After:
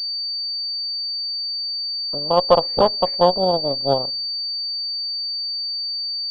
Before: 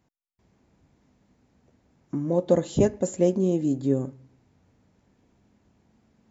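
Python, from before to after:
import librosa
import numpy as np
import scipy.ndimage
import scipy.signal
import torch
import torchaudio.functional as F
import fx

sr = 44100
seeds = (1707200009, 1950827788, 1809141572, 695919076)

y = fx.cheby_harmonics(x, sr, harmonics=(2, 5, 6, 7), levels_db=(-7, -33, -16, -22), full_scale_db=-7.0)
y = fx.band_shelf(y, sr, hz=780.0, db=14.0, octaves=1.7)
y = fx.pwm(y, sr, carrier_hz=4600.0)
y = F.gain(torch.from_numpy(y), -7.0).numpy()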